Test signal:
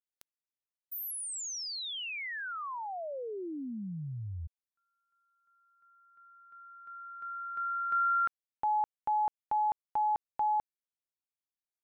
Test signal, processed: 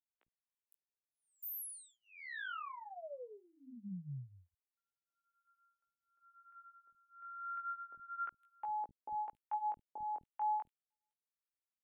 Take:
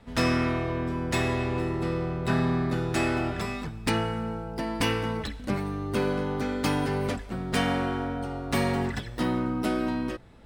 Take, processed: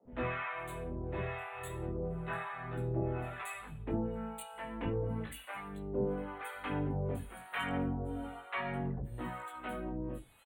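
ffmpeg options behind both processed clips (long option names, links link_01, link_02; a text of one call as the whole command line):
ffmpeg -i in.wav -filter_complex "[0:a]acrossover=split=270|3900[link_01][link_02][link_03];[link_01]adelay=50[link_04];[link_03]adelay=510[link_05];[link_04][link_02][link_05]amix=inputs=3:normalize=0,flanger=delay=15.5:depth=7.2:speed=0.34,acrossover=split=710[link_06][link_07];[link_06]aeval=exprs='val(0)*(1-1/2+1/2*cos(2*PI*1*n/s))':channel_layout=same[link_08];[link_07]aeval=exprs='val(0)*(1-1/2-1/2*cos(2*PI*1*n/s))':channel_layout=same[link_09];[link_08][link_09]amix=inputs=2:normalize=0,asuperstop=centerf=5300:order=4:qfactor=0.95,volume=-1dB" out.wav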